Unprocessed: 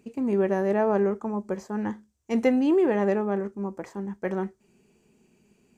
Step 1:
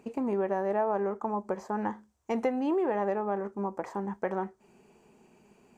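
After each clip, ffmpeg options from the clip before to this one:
ffmpeg -i in.wav -af "equalizer=frequency=880:width_type=o:width=1.8:gain=12.5,acompressor=threshold=-30dB:ratio=2.5,volume=-1dB" out.wav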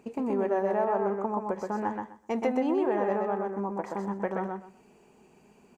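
ffmpeg -i in.wav -af "aecho=1:1:126|252|378:0.668|0.127|0.0241" out.wav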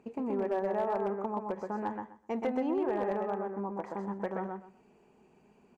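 ffmpeg -i in.wav -af "highshelf=frequency=5000:gain=-11.5,volume=19.5dB,asoftclip=hard,volume=-19.5dB,volume=-4dB" out.wav

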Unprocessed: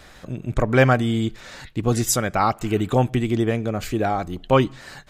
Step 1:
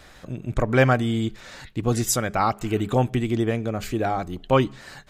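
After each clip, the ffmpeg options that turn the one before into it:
ffmpeg -i in.wav -af "bandreject=frequency=205:width_type=h:width=4,bandreject=frequency=410:width_type=h:width=4,volume=-2dB" out.wav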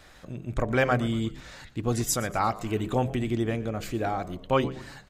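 ffmpeg -i in.wav -filter_complex "[0:a]bandreject=frequency=65.07:width_type=h:width=4,bandreject=frequency=130.14:width_type=h:width=4,bandreject=frequency=195.21:width_type=h:width=4,bandreject=frequency=260.28:width_type=h:width=4,bandreject=frequency=325.35:width_type=h:width=4,bandreject=frequency=390.42:width_type=h:width=4,bandreject=frequency=455.49:width_type=h:width=4,bandreject=frequency=520.56:width_type=h:width=4,bandreject=frequency=585.63:width_type=h:width=4,bandreject=frequency=650.7:width_type=h:width=4,bandreject=frequency=715.77:width_type=h:width=4,asplit=5[link_01][link_02][link_03][link_04][link_05];[link_02]adelay=118,afreqshift=-82,volume=-18dB[link_06];[link_03]adelay=236,afreqshift=-164,volume=-25.1dB[link_07];[link_04]adelay=354,afreqshift=-246,volume=-32.3dB[link_08];[link_05]adelay=472,afreqshift=-328,volume=-39.4dB[link_09];[link_01][link_06][link_07][link_08][link_09]amix=inputs=5:normalize=0,volume=-4dB" out.wav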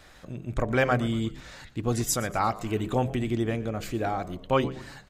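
ffmpeg -i in.wav -af anull out.wav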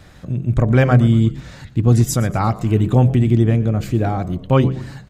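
ffmpeg -i in.wav -af "equalizer=frequency=120:width_type=o:width=2.5:gain=14.5,volume=3dB" out.wav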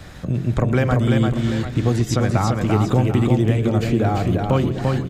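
ffmpeg -i in.wav -filter_complex "[0:a]acrossover=split=310|5000[link_01][link_02][link_03];[link_01]acompressor=threshold=-26dB:ratio=4[link_04];[link_02]acompressor=threshold=-27dB:ratio=4[link_05];[link_03]acompressor=threshold=-53dB:ratio=4[link_06];[link_04][link_05][link_06]amix=inputs=3:normalize=0,asplit=2[link_07][link_08];[link_08]aecho=0:1:342|742:0.668|0.266[link_09];[link_07][link_09]amix=inputs=2:normalize=0,volume=5.5dB" out.wav

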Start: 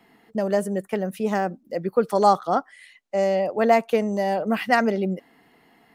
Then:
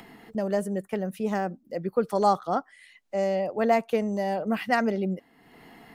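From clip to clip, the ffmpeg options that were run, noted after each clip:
ffmpeg -i in.wav -af "acompressor=mode=upward:threshold=-34dB:ratio=2.5,lowshelf=frequency=140:gain=7,volume=-5dB" out.wav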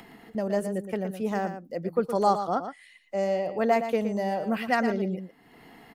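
ffmpeg -i in.wav -af "aecho=1:1:117:0.335,volume=-1dB" out.wav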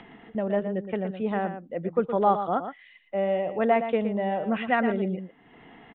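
ffmpeg -i in.wav -af "aresample=8000,aresample=44100,volume=1dB" out.wav

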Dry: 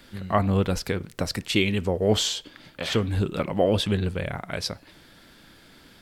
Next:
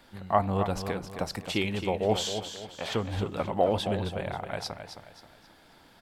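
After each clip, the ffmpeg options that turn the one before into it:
ffmpeg -i in.wav -filter_complex "[0:a]equalizer=frequency=820:width_type=o:width=0.89:gain=11,asplit=2[link_01][link_02];[link_02]aecho=0:1:266|532|798|1064:0.355|0.131|0.0486|0.018[link_03];[link_01][link_03]amix=inputs=2:normalize=0,volume=-7.5dB" out.wav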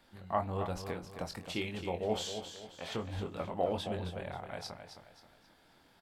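ffmpeg -i in.wav -filter_complex "[0:a]asplit=2[link_01][link_02];[link_02]adelay=23,volume=-6.5dB[link_03];[link_01][link_03]amix=inputs=2:normalize=0,volume=-8.5dB" out.wav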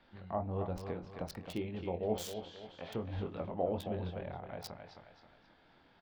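ffmpeg -i in.wav -filter_complex "[0:a]acrossover=split=770|4500[link_01][link_02][link_03];[link_02]acompressor=threshold=-51dB:ratio=6[link_04];[link_03]acrusher=bits=6:mix=0:aa=0.000001[link_05];[link_01][link_04][link_05]amix=inputs=3:normalize=0" out.wav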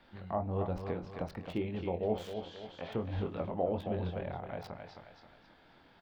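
ffmpeg -i in.wav -filter_complex "[0:a]acrossover=split=3100[link_01][link_02];[link_02]acompressor=threshold=-60dB:ratio=4:attack=1:release=60[link_03];[link_01][link_03]amix=inputs=2:normalize=0,asplit=2[link_04][link_05];[link_05]alimiter=level_in=4dB:limit=-24dB:level=0:latency=1:release=360,volume=-4dB,volume=-2dB[link_06];[link_04][link_06]amix=inputs=2:normalize=0,volume=-1.5dB" out.wav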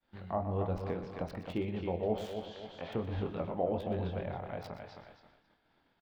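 ffmpeg -i in.wav -filter_complex "[0:a]asplit=2[link_01][link_02];[link_02]adelay=122.4,volume=-11dB,highshelf=frequency=4000:gain=-2.76[link_03];[link_01][link_03]amix=inputs=2:normalize=0,agate=range=-33dB:threshold=-52dB:ratio=3:detection=peak" out.wav

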